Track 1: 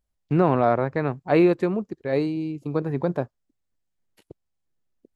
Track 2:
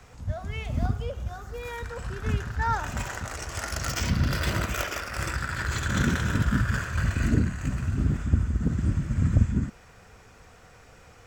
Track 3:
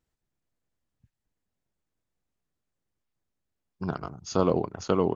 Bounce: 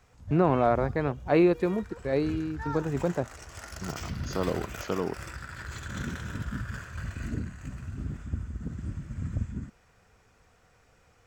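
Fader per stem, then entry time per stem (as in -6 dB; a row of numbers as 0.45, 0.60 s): -3.5, -10.5, -6.0 dB; 0.00, 0.00, 0.00 s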